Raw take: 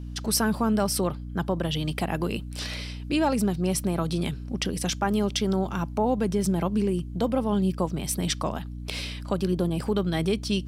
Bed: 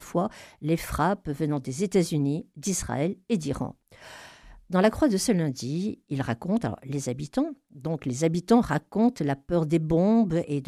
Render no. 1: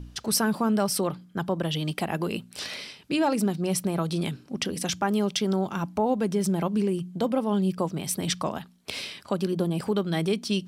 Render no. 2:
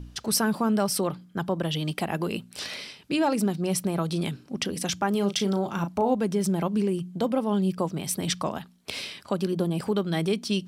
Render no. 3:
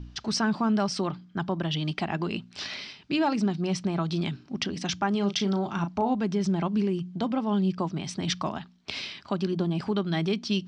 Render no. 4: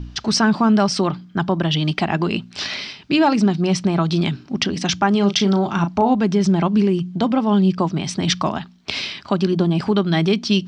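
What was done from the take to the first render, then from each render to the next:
de-hum 60 Hz, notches 5
5.11–6.15 s: doubling 35 ms -9 dB
inverse Chebyshev low-pass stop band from 12 kHz, stop band 50 dB; peaking EQ 500 Hz -11 dB 0.34 oct
trim +9.5 dB

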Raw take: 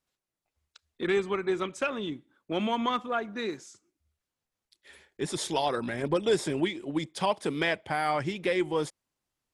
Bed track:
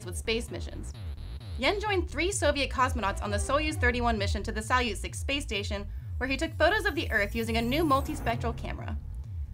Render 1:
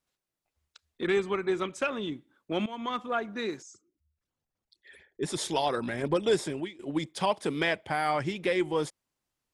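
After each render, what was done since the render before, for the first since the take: 2.66–3.12 s: fade in, from -16 dB; 3.62–5.23 s: resonances exaggerated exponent 2; 6.34–6.79 s: fade out linear, to -18 dB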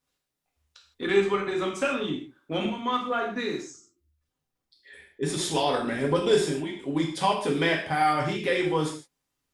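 gated-style reverb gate 190 ms falling, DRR -1.5 dB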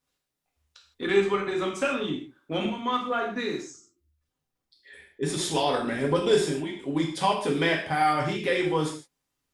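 no audible change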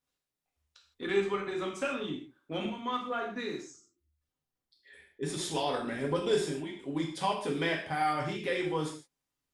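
trim -6.5 dB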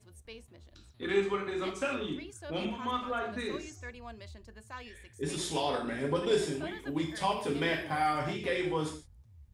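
add bed track -19 dB

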